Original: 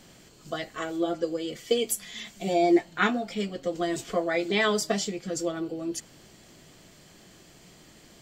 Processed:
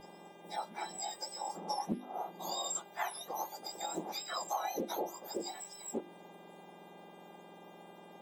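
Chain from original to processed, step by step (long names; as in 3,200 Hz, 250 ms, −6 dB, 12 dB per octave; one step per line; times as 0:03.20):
frequency axis turned over on the octave scale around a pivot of 1,600 Hz
low-shelf EQ 180 Hz +4 dB
mains-hum notches 50/100/150/200/250/300/350 Hz
harmonic and percussive parts rebalanced harmonic −5 dB
drawn EQ curve 110 Hz 0 dB, 420 Hz −6 dB, 870 Hz +7 dB, 1,300 Hz −9 dB
downward compressor 6 to 1, threshold −34 dBFS, peak gain reduction 14 dB
hum with harmonics 400 Hz, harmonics 9, −62 dBFS −3 dB per octave
backwards echo 1,198 ms −23 dB
highs frequency-modulated by the lows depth 0.28 ms
level +1 dB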